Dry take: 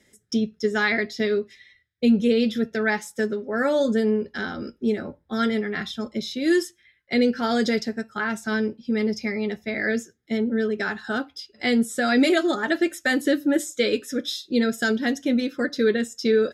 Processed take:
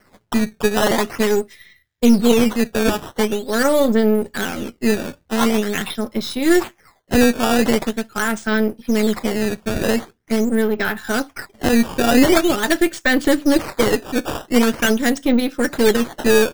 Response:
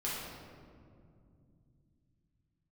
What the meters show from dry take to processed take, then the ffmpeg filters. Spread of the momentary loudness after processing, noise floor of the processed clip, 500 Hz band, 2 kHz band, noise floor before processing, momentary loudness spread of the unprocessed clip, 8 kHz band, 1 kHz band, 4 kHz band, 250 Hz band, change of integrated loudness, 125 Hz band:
8 LU, -59 dBFS, +5.5 dB, +3.5 dB, -65 dBFS, 8 LU, +11.0 dB, +7.5 dB, +5.5 dB, +5.5 dB, +5.5 dB, +8.0 dB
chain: -af "aeval=exprs='if(lt(val(0),0),0.447*val(0),val(0))':c=same,acrusher=samples=12:mix=1:aa=0.000001:lfo=1:lforange=19.2:lforate=0.44,volume=8dB"

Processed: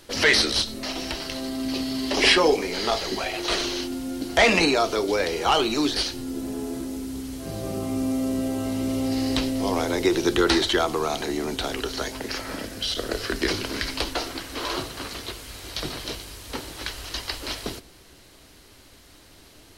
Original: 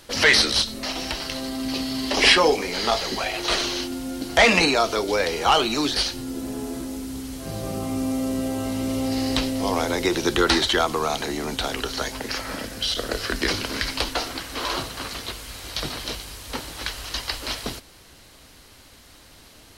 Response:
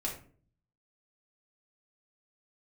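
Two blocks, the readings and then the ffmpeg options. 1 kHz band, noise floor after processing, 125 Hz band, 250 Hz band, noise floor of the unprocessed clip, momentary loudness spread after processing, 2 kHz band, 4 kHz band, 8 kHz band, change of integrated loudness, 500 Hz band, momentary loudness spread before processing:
-2.5 dB, -51 dBFS, -1.5 dB, +0.5 dB, -50 dBFS, 15 LU, -2.5 dB, -2.5 dB, -2.5 dB, -1.5 dB, 0.0 dB, 15 LU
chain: -filter_complex "[0:a]equalizer=f=370:t=o:w=0.46:g=4.5,asplit=2[a][b];[1:a]atrim=start_sample=2205,lowpass=f=1.2k:w=0.5412,lowpass=f=1.2k:w=1.3066[c];[b][c]afir=irnorm=-1:irlink=0,volume=-16dB[d];[a][d]amix=inputs=2:normalize=0,volume=-2.5dB"

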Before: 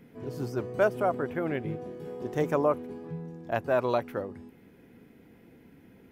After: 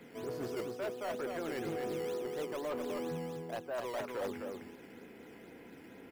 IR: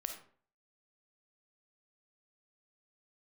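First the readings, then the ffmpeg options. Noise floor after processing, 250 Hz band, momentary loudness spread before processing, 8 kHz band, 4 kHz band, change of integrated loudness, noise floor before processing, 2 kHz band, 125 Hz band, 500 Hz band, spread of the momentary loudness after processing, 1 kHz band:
-54 dBFS, -7.5 dB, 14 LU, n/a, +1.0 dB, -8.5 dB, -57 dBFS, -8.5 dB, -12.0 dB, -8.0 dB, 15 LU, -10.0 dB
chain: -filter_complex "[0:a]bass=f=250:g=-13,treble=f=4k:g=-7,areverse,acompressor=threshold=-38dB:ratio=10,areverse,asoftclip=type=tanh:threshold=-38dB,acrossover=split=170|590[a][b][c];[b]acrusher=samples=10:mix=1:aa=0.000001:lfo=1:lforange=16:lforate=2.1[d];[a][d][c]amix=inputs=3:normalize=0,aecho=1:1:255:0.596,aeval=exprs='0.015*(abs(mod(val(0)/0.015+3,4)-2)-1)':c=same,volume=6dB"

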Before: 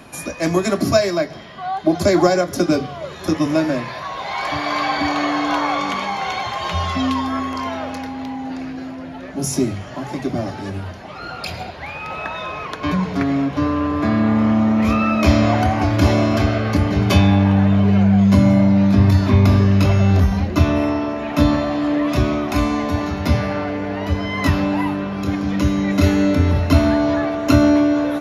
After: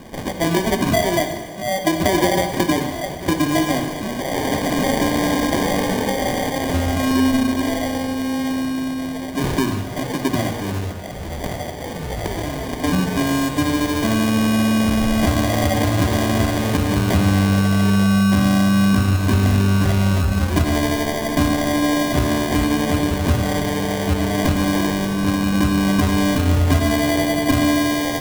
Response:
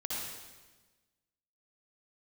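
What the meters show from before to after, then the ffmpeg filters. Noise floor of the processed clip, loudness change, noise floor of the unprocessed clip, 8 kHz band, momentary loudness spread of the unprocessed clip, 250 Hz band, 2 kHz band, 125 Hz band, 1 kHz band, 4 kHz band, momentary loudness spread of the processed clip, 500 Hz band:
-28 dBFS, -1.0 dB, -33 dBFS, +5.5 dB, 14 LU, -1.0 dB, +1.5 dB, -2.0 dB, -1.0 dB, +3.0 dB, 9 LU, -1.0 dB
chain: -filter_complex "[0:a]acrusher=samples=33:mix=1:aa=0.000001,acompressor=threshold=-17dB:ratio=4,asplit=2[a][b];[1:a]atrim=start_sample=2205[c];[b][c]afir=irnorm=-1:irlink=0,volume=-8dB[d];[a][d]amix=inputs=2:normalize=0"

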